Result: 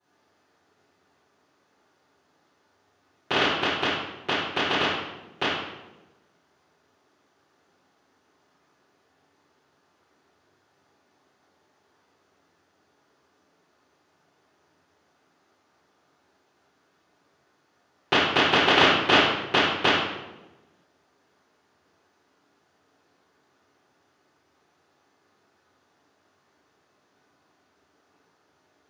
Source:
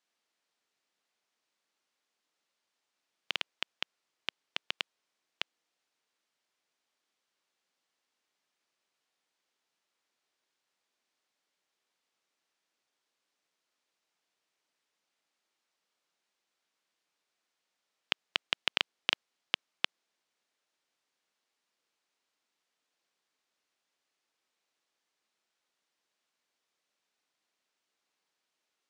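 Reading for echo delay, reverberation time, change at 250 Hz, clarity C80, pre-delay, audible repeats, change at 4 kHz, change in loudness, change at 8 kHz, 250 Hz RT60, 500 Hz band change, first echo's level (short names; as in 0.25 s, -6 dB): none, 1.1 s, +27.0 dB, 2.5 dB, 3 ms, none, +10.5 dB, +13.0 dB, +10.0 dB, 1.3 s, +24.5 dB, none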